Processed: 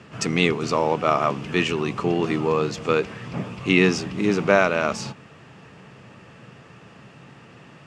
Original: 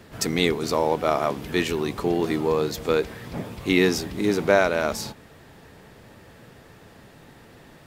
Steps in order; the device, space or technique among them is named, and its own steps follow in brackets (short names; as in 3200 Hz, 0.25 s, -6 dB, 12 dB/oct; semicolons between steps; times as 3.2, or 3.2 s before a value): car door speaker (speaker cabinet 97–7700 Hz, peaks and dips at 130 Hz +8 dB, 190 Hz +5 dB, 1200 Hz +7 dB, 2700 Hz +9 dB, 3900 Hz -5 dB)